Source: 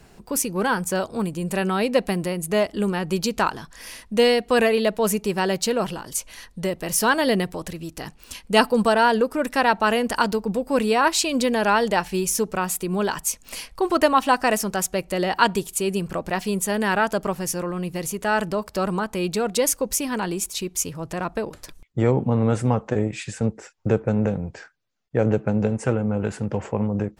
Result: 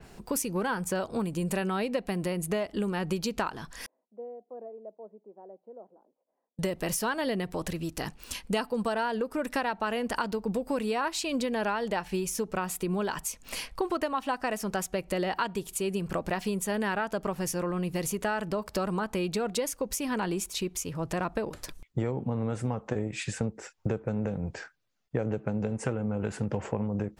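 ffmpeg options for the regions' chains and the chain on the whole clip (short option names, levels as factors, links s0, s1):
-filter_complex "[0:a]asettb=1/sr,asplit=3[s0][s1][s2];[s0]atrim=end=3.864[s3];[s1]atrim=start=3.86:end=6.59,asetpts=PTS-STARTPTS,afade=t=in:d=0.004:c=qsin,afade=t=out:st=2.726:d=0.004:c=qsin,asuperpass=centerf=380:order=8:qfactor=0.71,aderivative[s4];[s2]atrim=start=6.586[s5];[s3][s4]acrossfade=d=0.004:c1=hsin:c2=qsin[s6];[s6][s5]acrossfade=d=0.004:c1=qsin:c2=hsin,acompressor=threshold=0.0501:ratio=10,adynamicequalizer=threshold=0.00447:dfrequency=4300:dqfactor=0.7:tfrequency=4300:tqfactor=0.7:attack=5:release=100:ratio=0.375:range=3:mode=cutabove:tftype=highshelf"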